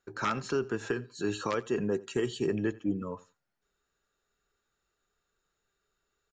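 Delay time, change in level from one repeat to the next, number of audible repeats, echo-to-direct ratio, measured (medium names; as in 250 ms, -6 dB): 87 ms, no regular repeats, 1, -21.5 dB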